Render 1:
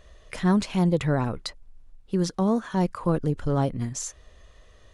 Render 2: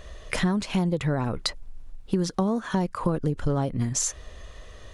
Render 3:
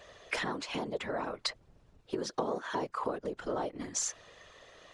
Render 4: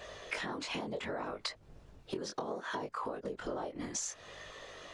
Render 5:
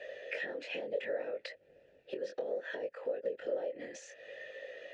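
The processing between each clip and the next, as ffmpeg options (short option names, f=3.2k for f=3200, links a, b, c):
-af "acompressor=threshold=-30dB:ratio=10,volume=9dB"
-filter_complex "[0:a]afftfilt=real='hypot(re,im)*cos(2*PI*random(0))':imag='hypot(re,im)*sin(2*PI*random(1))':win_size=512:overlap=0.75,acrossover=split=330 7500:gain=0.0891 1 0.224[a][b][c];[a][b][c]amix=inputs=3:normalize=0,volume=2dB"
-af "flanger=delay=19:depth=4.7:speed=0.66,acompressor=threshold=-45dB:ratio=6,volume=9dB"
-filter_complex "[0:a]asplit=3[a][b][c];[a]bandpass=f=530:t=q:w=8,volume=0dB[d];[b]bandpass=f=1.84k:t=q:w=8,volume=-6dB[e];[c]bandpass=f=2.48k:t=q:w=8,volume=-9dB[f];[d][e][f]amix=inputs=3:normalize=0,volume=10.5dB"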